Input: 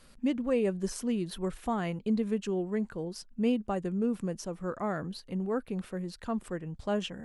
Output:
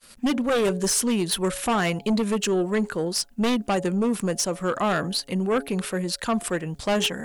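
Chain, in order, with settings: expander -50 dBFS; tilt EQ +2.5 dB/octave; de-hum 139.3 Hz, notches 6; in parallel at -6.5 dB: sine folder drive 15 dB, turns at -14.5 dBFS

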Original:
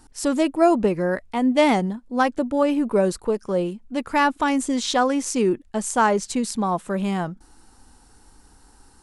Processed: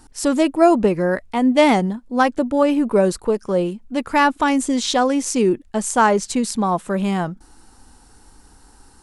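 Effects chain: 4.52–5.67 s: dynamic bell 1.3 kHz, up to -4 dB, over -35 dBFS, Q 1.2; trim +3.5 dB

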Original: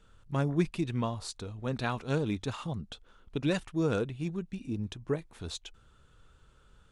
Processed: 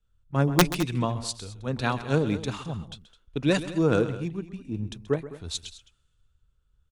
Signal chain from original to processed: integer overflow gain 17 dB; multi-tap echo 131/212 ms -13/-12.5 dB; three bands expanded up and down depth 70%; trim +4.5 dB

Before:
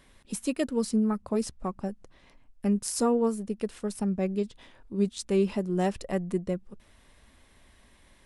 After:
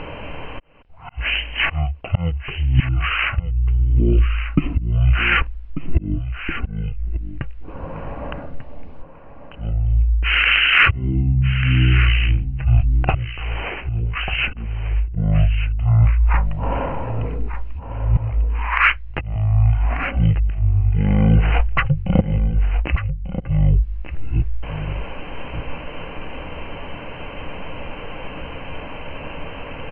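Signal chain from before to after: hum notches 50/100/150/200 Hz; slow attack 384 ms; reverse; compression 12:1, threshold -40 dBFS, peak gain reduction 18.5 dB; reverse; wide varispeed 0.276×; in parallel at -8 dB: saturation -38 dBFS, distortion -16 dB; on the sum: four-pole ladder low-pass 3.9 kHz, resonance 25%; delay 1192 ms -11.5 dB; loudness maximiser +32.5 dB; trim -1 dB

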